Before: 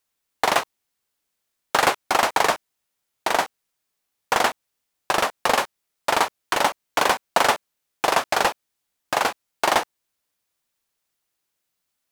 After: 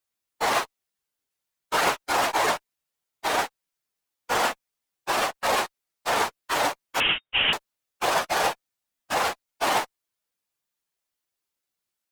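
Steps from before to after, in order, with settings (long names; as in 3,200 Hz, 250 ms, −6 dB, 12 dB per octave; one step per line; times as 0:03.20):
random phases in long frames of 50 ms
in parallel at −11 dB: fuzz pedal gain 33 dB, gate −40 dBFS
0:07.00–0:07.53: on the sum: voice inversion scrambler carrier 3,700 Hz
level −6.5 dB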